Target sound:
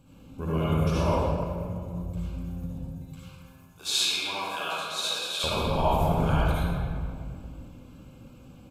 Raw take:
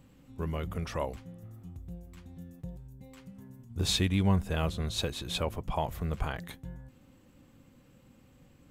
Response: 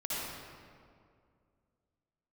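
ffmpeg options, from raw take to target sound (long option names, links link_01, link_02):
-filter_complex "[0:a]asettb=1/sr,asplit=3[link_01][link_02][link_03];[link_01]atrim=end=2.664[link_04];[link_02]atrim=start=2.66:end=5.44,asetpts=PTS-STARTPTS,afade=type=in:duration=0.004:curve=qsin,afade=type=out:start_time=2.776:duration=0.004:curve=qsin,highpass=1000[link_05];[link_03]atrim=start=5.436[link_06];[link_04][link_05]acrossfade=duration=0.004:curve1=hsin:curve2=qsin[link_07];[link_07][link_06]acrossfade=duration=0.004:curve1=qsin:curve2=hsin[link_08];[1:a]atrim=start_sample=2205[link_09];[link_08][link_09]afir=irnorm=-1:irlink=0,aresample=32000,aresample=44100,asuperstop=centerf=1900:order=8:qfactor=4.5,volume=4dB"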